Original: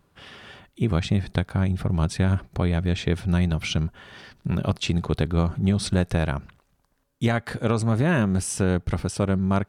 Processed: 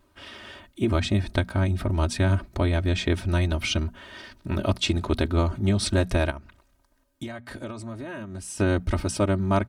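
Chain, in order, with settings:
mains-hum notches 60/120/180/240 Hz
comb filter 3.2 ms, depth 81%
0:06.30–0:08.60: downward compressor 10 to 1, threshold −33 dBFS, peak gain reduction 16 dB

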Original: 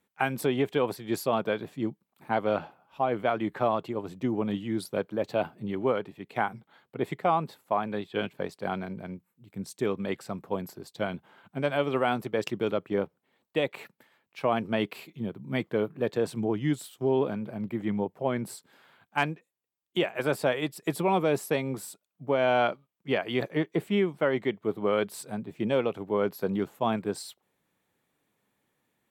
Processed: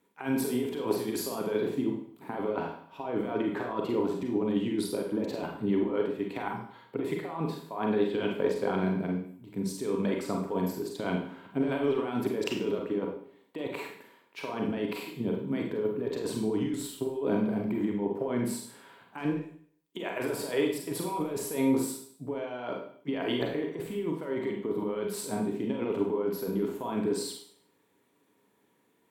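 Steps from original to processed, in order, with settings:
low-shelf EQ 74 Hz −6.5 dB
compressor whose output falls as the input rises −33 dBFS, ratio −1
hollow resonant body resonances 290/410/960 Hz, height 11 dB, ringing for 60 ms
convolution reverb RT60 0.55 s, pre-delay 33 ms, DRR 0.5 dB
level −4 dB

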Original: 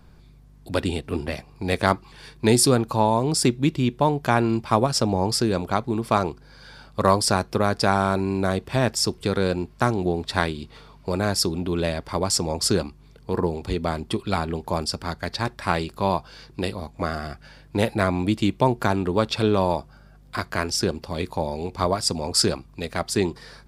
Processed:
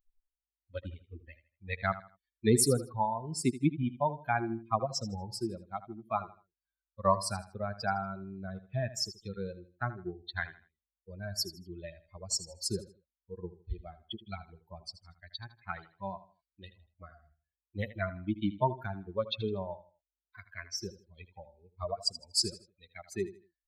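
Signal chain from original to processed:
spectral dynamics exaggerated over time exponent 3
notch filter 2,800 Hz, Q 7.3
repeating echo 79 ms, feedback 30%, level −15 dB
level −3 dB

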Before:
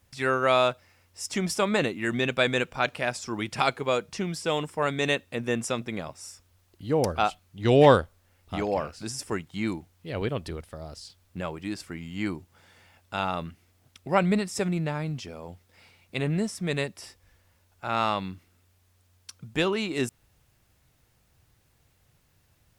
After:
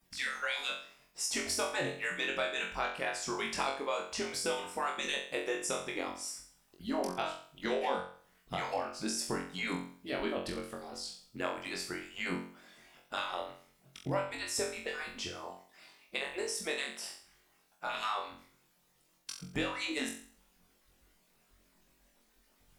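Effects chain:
harmonic-percussive split with one part muted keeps percussive
0:15.48–0:17.85: low-shelf EQ 240 Hz −10 dB
downward compressor 10 to 1, threshold −33 dBFS, peak gain reduction 18.5 dB
flutter between parallel walls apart 3.8 metres, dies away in 0.49 s

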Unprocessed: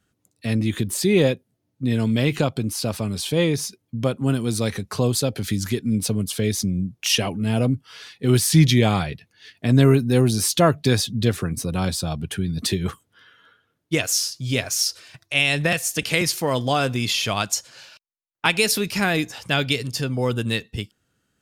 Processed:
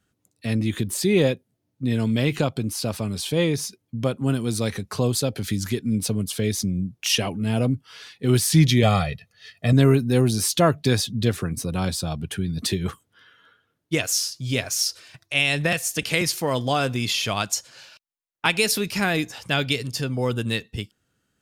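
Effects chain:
0:08.83–0:09.73: comb filter 1.6 ms, depth 79%
level −1.5 dB

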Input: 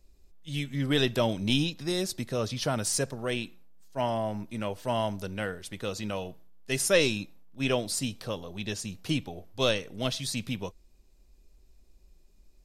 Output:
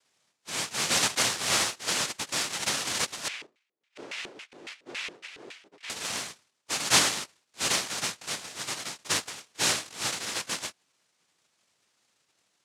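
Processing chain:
cochlear-implant simulation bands 1
0:03.28–0:05.90: auto-filter band-pass square 3.6 Hz 380–2,400 Hz

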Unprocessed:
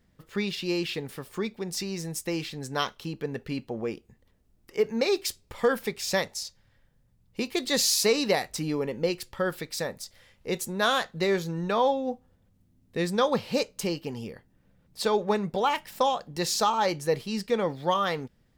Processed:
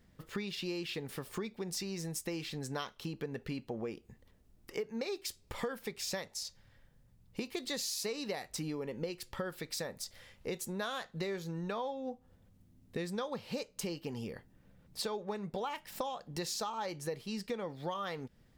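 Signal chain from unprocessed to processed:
downward compressor 6 to 1, threshold −37 dBFS, peak gain reduction 17.5 dB
level +1 dB

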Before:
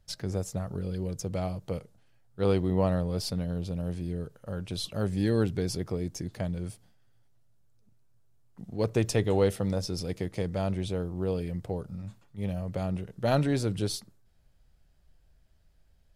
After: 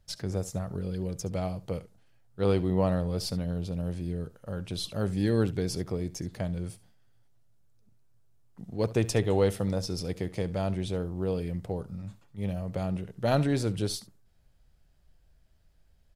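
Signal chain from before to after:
single-tap delay 70 ms −18 dB

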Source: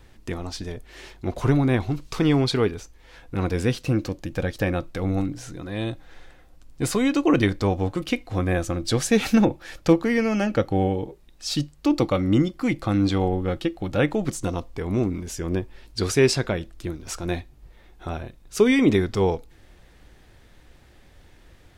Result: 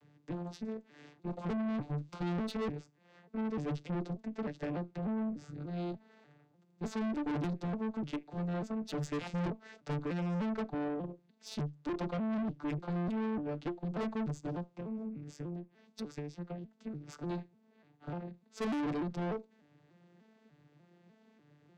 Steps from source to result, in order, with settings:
vocoder with an arpeggio as carrier minor triad, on D3, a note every 297 ms
0:14.68–0:17.13: downward compressor 10 to 1, threshold −33 dBFS, peak gain reduction 19 dB
tube saturation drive 30 dB, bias 0.4
level −2.5 dB

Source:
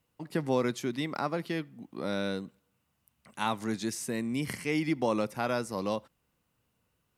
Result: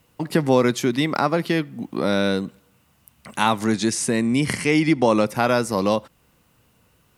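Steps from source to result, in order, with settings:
0:03.67–0:05.27: Butterworth low-pass 11,000 Hz 48 dB per octave
in parallel at +1.5 dB: downward compressor, threshold −39 dBFS, peak gain reduction 15.5 dB
on the sum: level +9 dB

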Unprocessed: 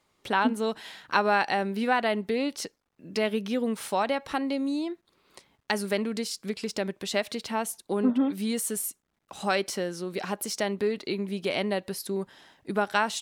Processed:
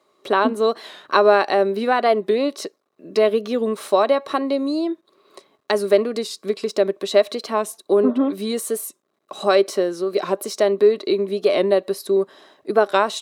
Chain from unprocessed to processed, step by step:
high-pass filter 190 Hz 12 dB per octave
hollow resonant body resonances 400/590/1,100/3,900 Hz, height 13 dB, ringing for 25 ms
wow of a warped record 45 rpm, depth 100 cents
level +1 dB

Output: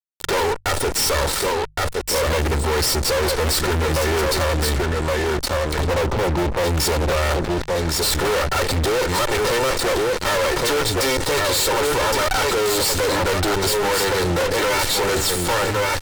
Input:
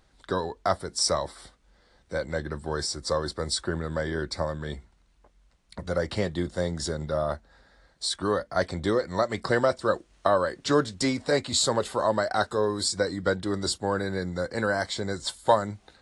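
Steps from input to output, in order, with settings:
lower of the sound and its delayed copy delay 2.2 ms
0:05.80–0:06.64: Butterworth low-pass 1,300 Hz 96 dB per octave
on a send: single-tap delay 1,117 ms −10.5 dB
on the sum: fuzz pedal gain 48 dB, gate −50 dBFS
in parallel at −3 dB: compressor whose output falls as the input rises −27 dBFS, ratio −1
on the sum: mains-hum notches 50/100/150 Hz
level −6 dB

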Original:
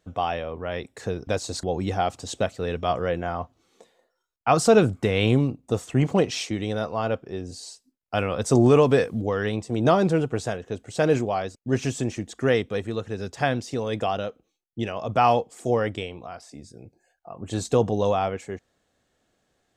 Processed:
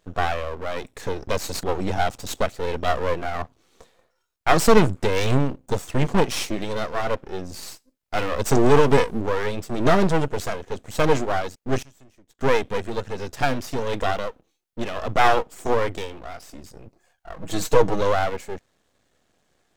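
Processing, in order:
half-wave rectification
0:11.82–0:12.41: gate with flip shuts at −31 dBFS, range −26 dB
0:17.36–0:18.01: comb filter 6.3 ms, depth 68%
level +7 dB

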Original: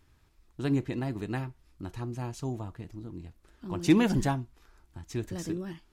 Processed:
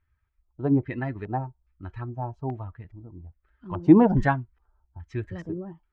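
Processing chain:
spectral dynamics exaggerated over time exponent 1.5
auto-filter low-pass square 1.2 Hz 810–2,000 Hz
level +7 dB

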